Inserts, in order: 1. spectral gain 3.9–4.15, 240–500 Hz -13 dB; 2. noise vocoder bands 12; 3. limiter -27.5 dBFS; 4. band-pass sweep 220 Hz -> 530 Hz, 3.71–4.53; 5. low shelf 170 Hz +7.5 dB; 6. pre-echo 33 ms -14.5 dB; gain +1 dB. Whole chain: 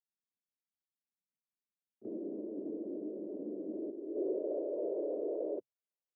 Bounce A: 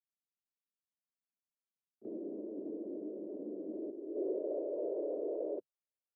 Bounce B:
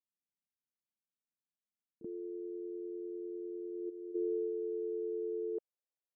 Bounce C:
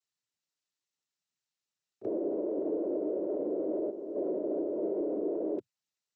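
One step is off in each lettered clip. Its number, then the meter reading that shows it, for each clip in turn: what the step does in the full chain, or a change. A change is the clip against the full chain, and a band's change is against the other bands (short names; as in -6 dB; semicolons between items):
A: 5, loudness change -1.0 LU; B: 2, crest factor change -1.5 dB; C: 4, loudness change +5.5 LU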